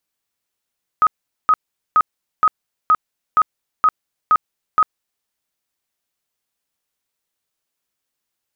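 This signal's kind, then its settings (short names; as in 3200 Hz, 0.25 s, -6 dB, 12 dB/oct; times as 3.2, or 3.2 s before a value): tone bursts 1260 Hz, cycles 61, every 0.47 s, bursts 9, -9 dBFS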